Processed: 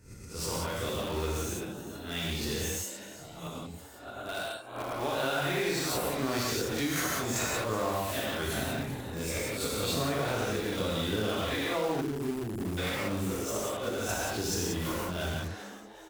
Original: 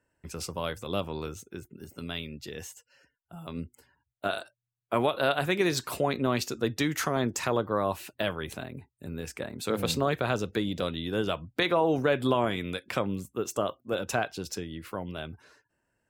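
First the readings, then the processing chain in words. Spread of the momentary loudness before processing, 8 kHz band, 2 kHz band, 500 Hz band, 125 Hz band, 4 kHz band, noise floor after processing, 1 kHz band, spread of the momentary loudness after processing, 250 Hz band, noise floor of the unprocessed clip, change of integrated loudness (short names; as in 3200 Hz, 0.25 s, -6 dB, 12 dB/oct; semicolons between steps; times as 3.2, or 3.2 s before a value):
15 LU, +5.0 dB, -0.5 dB, -3.0 dB, 0.0 dB, +1.0 dB, -47 dBFS, -3.0 dB, 10 LU, -2.0 dB, -81 dBFS, -1.5 dB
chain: spectral swells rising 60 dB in 0.51 s; low shelf 67 Hz +9.5 dB; auto swell 0.355 s; high shelf 12000 Hz +5 dB; non-linear reverb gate 0.21 s flat, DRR -5 dB; compressor 6:1, threshold -28 dBFS, peak gain reduction 14 dB; on a send: frequency-shifting echo 0.377 s, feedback 58%, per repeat +120 Hz, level -17 dB; on the sum: spectral delete 12.01–12.78, 440–4600 Hz; in parallel at -8.5 dB: wrapped overs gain 32 dB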